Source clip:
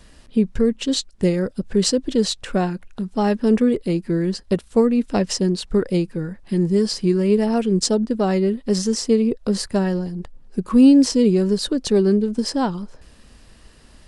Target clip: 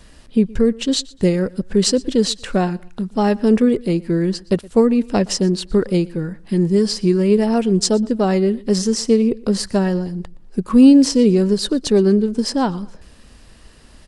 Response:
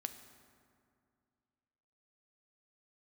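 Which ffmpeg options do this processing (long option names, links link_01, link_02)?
-af "aecho=1:1:119|238:0.0708|0.0205,volume=2.5dB"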